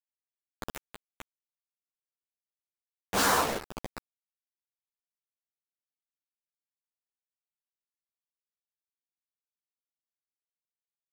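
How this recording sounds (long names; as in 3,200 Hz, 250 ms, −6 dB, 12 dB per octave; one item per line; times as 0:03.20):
phaser sweep stages 2, 0.35 Hz, lowest notch 390–2,800 Hz
a quantiser's noise floor 6 bits, dither none
sample-and-hold tremolo 3.5 Hz
a shimmering, thickened sound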